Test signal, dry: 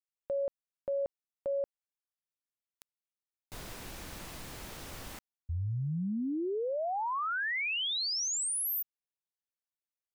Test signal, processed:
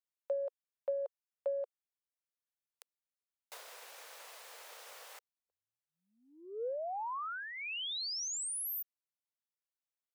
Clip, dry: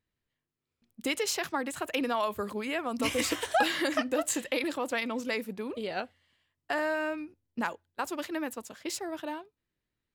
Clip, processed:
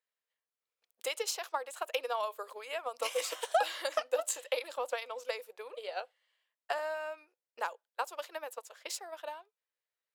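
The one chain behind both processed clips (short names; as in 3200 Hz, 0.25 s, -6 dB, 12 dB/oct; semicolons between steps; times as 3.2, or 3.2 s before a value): elliptic high-pass 480 Hz, stop band 70 dB; dynamic EQ 1900 Hz, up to -7 dB, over -49 dBFS, Q 2; transient shaper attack +6 dB, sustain -1 dB; gain -4.5 dB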